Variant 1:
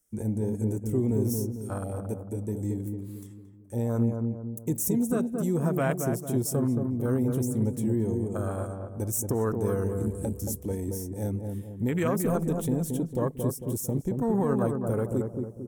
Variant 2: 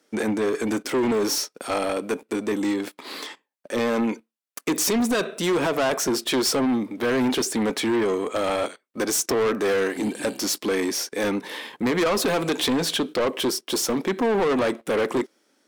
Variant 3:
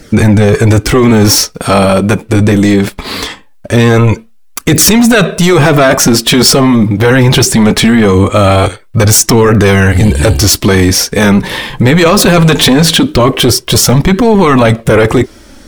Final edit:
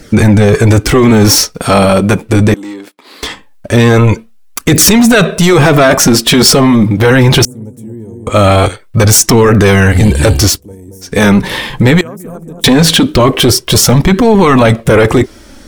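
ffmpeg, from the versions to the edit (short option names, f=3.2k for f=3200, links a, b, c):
-filter_complex "[0:a]asplit=3[a][b][c];[2:a]asplit=5[d][e][f][g][h];[d]atrim=end=2.542[i];[1:a]atrim=start=2.538:end=3.232[j];[e]atrim=start=3.228:end=7.452[k];[a]atrim=start=7.448:end=8.272[l];[f]atrim=start=8.268:end=10.62[m];[b]atrim=start=10.46:end=11.17[n];[g]atrim=start=11.01:end=12.012[o];[c]atrim=start=12.008:end=12.642[p];[h]atrim=start=12.638[q];[i][j]acrossfade=d=0.004:c1=hsin:c2=hsin[r];[r][k]acrossfade=d=0.004:c1=hsin:c2=hsin[s];[s][l]acrossfade=d=0.004:c1=hsin:c2=hsin[t];[t][m]acrossfade=d=0.004:c1=hsin:c2=hsin[u];[u][n]acrossfade=d=0.16:c1=tri:c2=tri[v];[v][o]acrossfade=d=0.16:c1=tri:c2=tri[w];[w][p]acrossfade=d=0.004:c1=hsin:c2=hsin[x];[x][q]acrossfade=d=0.004:c1=hsin:c2=hsin"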